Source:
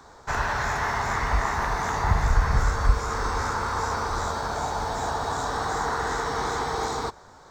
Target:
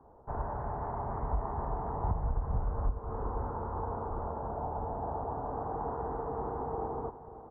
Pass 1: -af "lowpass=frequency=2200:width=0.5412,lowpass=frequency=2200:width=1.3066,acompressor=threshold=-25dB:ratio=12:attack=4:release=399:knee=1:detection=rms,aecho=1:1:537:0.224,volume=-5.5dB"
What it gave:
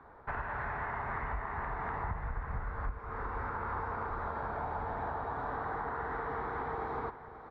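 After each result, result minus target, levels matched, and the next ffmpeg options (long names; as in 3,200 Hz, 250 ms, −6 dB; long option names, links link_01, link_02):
2,000 Hz band +17.5 dB; downward compressor: peak gain reduction +6 dB
-af "lowpass=frequency=860:width=0.5412,lowpass=frequency=860:width=1.3066,acompressor=threshold=-25dB:ratio=12:attack=4:release=399:knee=1:detection=rms,aecho=1:1:537:0.224,volume=-5.5dB"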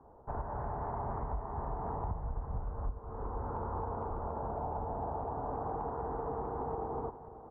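downward compressor: peak gain reduction +6 dB
-af "lowpass=frequency=860:width=0.5412,lowpass=frequency=860:width=1.3066,acompressor=threshold=-18.5dB:ratio=12:attack=4:release=399:knee=1:detection=rms,aecho=1:1:537:0.224,volume=-5.5dB"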